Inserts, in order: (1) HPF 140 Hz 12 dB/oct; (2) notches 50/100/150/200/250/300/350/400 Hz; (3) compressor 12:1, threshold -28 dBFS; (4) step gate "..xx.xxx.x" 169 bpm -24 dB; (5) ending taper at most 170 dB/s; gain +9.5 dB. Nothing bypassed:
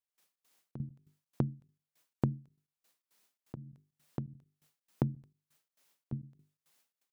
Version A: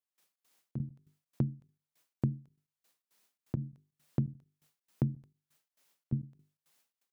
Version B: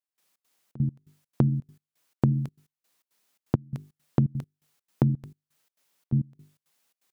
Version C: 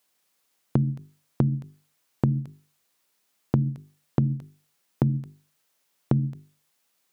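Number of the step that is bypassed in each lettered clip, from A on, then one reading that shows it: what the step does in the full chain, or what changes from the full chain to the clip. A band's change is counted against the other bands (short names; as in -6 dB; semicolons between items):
3, mean gain reduction 6.5 dB; 5, crest factor change -5.5 dB; 4, 125 Hz band +3.5 dB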